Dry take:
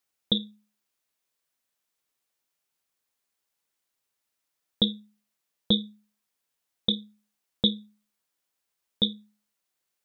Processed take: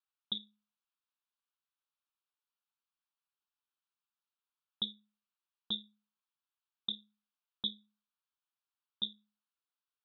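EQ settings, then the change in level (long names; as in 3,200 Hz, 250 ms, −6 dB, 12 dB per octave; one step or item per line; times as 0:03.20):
resonant band-pass 1,500 Hz, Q 0.57
phaser with its sweep stopped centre 2,000 Hz, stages 6
−7.0 dB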